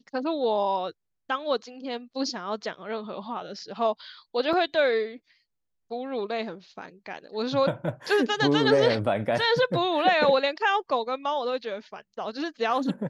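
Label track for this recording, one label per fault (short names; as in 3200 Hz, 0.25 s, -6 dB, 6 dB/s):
4.530000	4.530000	gap 3.1 ms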